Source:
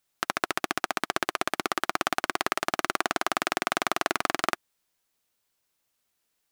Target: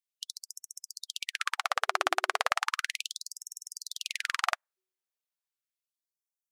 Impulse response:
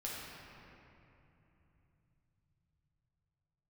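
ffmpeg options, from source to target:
-af "afftdn=nr=17:nf=-46,bandreject=f=187.9:t=h:w=4,bandreject=f=375.8:t=h:w=4,afftfilt=real='re*gte(b*sr/1024,340*pow(5500/340,0.5+0.5*sin(2*PI*0.35*pts/sr)))':imag='im*gte(b*sr/1024,340*pow(5500/340,0.5+0.5*sin(2*PI*0.35*pts/sr)))':win_size=1024:overlap=0.75"

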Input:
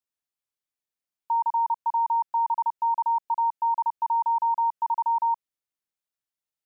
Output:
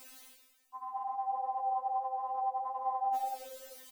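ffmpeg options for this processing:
-filter_complex "[0:a]equalizer=f=1100:w=2.5:g=-2.5,areverse,acompressor=mode=upward:threshold=0.0316:ratio=2.5,areverse,atempo=1.7,asplit=9[s0][s1][s2][s3][s4][s5][s6][s7][s8];[s1]adelay=97,afreqshift=-64,volume=0.299[s9];[s2]adelay=194,afreqshift=-128,volume=0.195[s10];[s3]adelay=291,afreqshift=-192,volume=0.126[s11];[s4]adelay=388,afreqshift=-256,volume=0.0822[s12];[s5]adelay=485,afreqshift=-320,volume=0.0531[s13];[s6]adelay=582,afreqshift=-384,volume=0.0347[s14];[s7]adelay=679,afreqshift=-448,volume=0.0224[s15];[s8]adelay=776,afreqshift=-512,volume=0.0146[s16];[s0][s9][s10][s11][s12][s13][s14][s15][s16]amix=inputs=9:normalize=0,afftfilt=real='re*3.46*eq(mod(b,12),0)':imag='im*3.46*eq(mod(b,12),0)':win_size=2048:overlap=0.75,volume=2.37"

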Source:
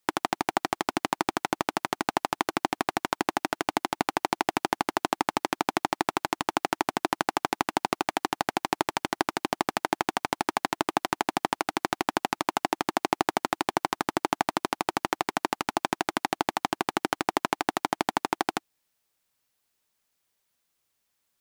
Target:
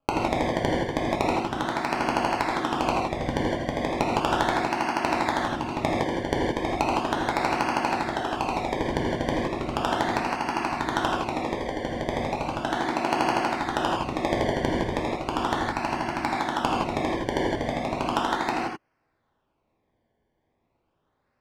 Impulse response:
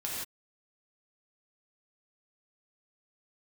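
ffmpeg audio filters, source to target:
-filter_complex "[0:a]acrusher=samples=23:mix=1:aa=0.000001:lfo=1:lforange=23:lforate=0.36[s0];[1:a]atrim=start_sample=2205[s1];[s0][s1]afir=irnorm=-1:irlink=0,adynamicsmooth=sensitivity=0.5:basefreq=4200"

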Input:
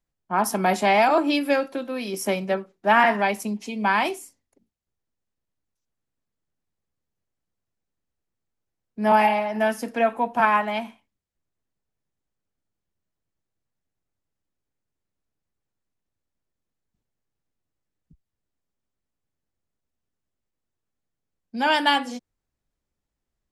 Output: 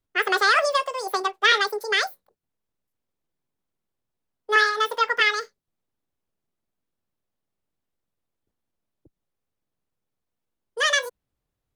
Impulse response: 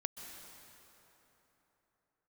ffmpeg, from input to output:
-filter_complex "[0:a]asetrate=88200,aresample=44100,acrossover=split=5900[s0][s1];[s1]acompressor=threshold=0.0141:ratio=4:attack=1:release=60[s2];[s0][s2]amix=inputs=2:normalize=0"

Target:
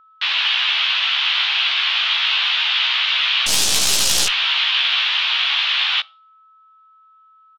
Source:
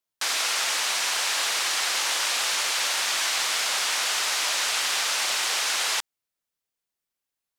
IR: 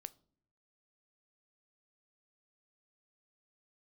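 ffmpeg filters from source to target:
-filter_complex "[0:a]highpass=f=210:t=q:w=0.5412,highpass=f=210:t=q:w=1.307,lowpass=f=3100:t=q:w=0.5176,lowpass=f=3100:t=q:w=0.7071,lowpass=f=3100:t=q:w=1.932,afreqshift=350,asettb=1/sr,asplit=3[s0][s1][s2];[s0]atrim=end=3.464[s3];[s1]atrim=start=3.46:end=4.27,asetpts=PTS-STARTPTS,afade=t=in:d=0.004:c=qsin,afade=t=out:st=0.806:d=0.004:c=qsin,aeval=exprs='0.133*(cos(1*acos(clip(val(0)/0.133,-1,1)))-cos(1*PI/2))+0.0266*(cos(3*acos(clip(val(0)/0.133,-1,1)))-cos(3*PI/2))+0.0376*(cos(4*acos(clip(val(0)/0.133,-1,1)))-cos(4*PI/2))+0.0188*(cos(7*acos(clip(val(0)/0.133,-1,1)))-cos(7*PI/2))+0.00596*(cos(8*acos(clip(val(0)/0.133,-1,1)))-cos(8*PI/2))':c=same[s4];[s2]atrim=start=4.266[s5];[s3][s4]acrossfade=d=0.004:c1=hsin:c2=qsin[s6];[s6][s5]acrossfade=d=0.004:c1=qsin:c2=hsin,aexciter=amount=4.5:drive=2.3:freq=2700,asplit=2[s7][s8];[s8]adelay=15,volume=0.708[s9];[s7][s9]amix=inputs=2:normalize=0,asplit=2[s10][s11];[1:a]atrim=start_sample=2205[s12];[s11][s12]afir=irnorm=-1:irlink=0,volume=2[s13];[s10][s13]amix=inputs=2:normalize=0,aeval=exprs='val(0)+0.00501*sin(2*PI*1300*n/s)':c=same,volume=0.708"

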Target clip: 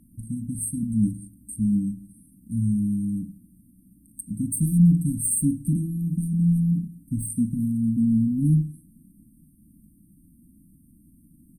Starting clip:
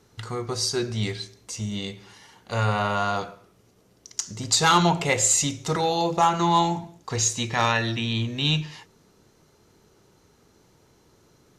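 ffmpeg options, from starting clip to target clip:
-af "acontrast=84,afftfilt=real='re*(1-between(b*sr/4096,330,8300))':imag='im*(1-between(b*sr/4096,330,8300))':win_size=4096:overlap=0.75,aecho=1:1:4.5:0.58"

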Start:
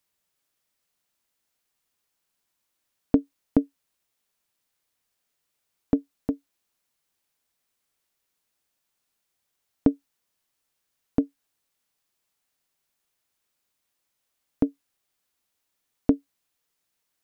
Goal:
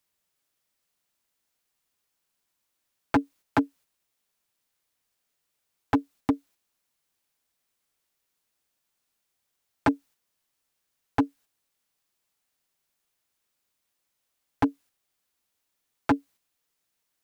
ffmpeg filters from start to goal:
-af "aeval=exprs='0.112*(abs(mod(val(0)/0.112+3,4)-2)-1)':c=same,agate=range=0.501:threshold=0.00158:ratio=16:detection=peak,volume=1.88"

